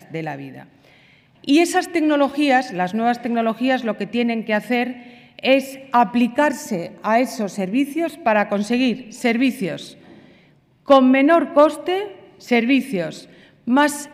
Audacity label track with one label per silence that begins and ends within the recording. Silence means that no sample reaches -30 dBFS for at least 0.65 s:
0.630000	1.440000	silence
9.890000	10.880000	silence